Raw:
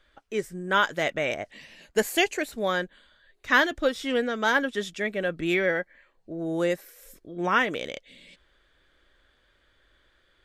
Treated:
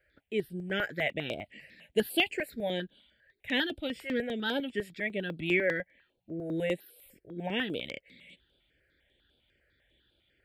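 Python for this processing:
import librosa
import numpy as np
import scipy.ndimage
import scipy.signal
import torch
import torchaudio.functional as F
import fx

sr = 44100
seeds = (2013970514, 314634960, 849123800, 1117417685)

y = scipy.signal.sosfilt(scipy.signal.butter(2, 71.0, 'highpass', fs=sr, output='sos'), x)
y = fx.fixed_phaser(y, sr, hz=2700.0, stages=4)
y = fx.phaser_held(y, sr, hz=10.0, low_hz=960.0, high_hz=6600.0)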